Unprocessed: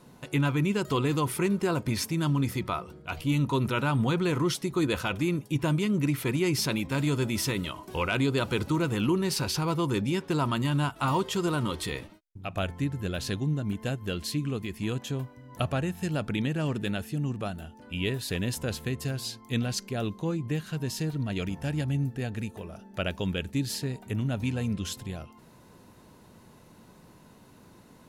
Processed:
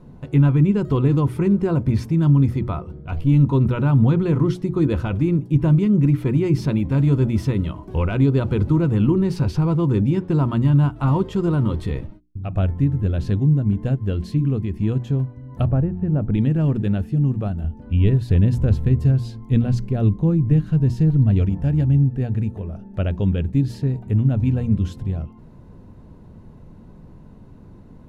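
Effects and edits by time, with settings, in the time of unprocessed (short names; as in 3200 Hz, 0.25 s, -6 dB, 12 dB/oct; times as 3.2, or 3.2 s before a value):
15.67–16.33 Bessel low-pass 1100 Hz
17.64–21.45 low shelf 130 Hz +8 dB
whole clip: tilt -4.5 dB/oct; notches 60/120/180/240/300/360 Hz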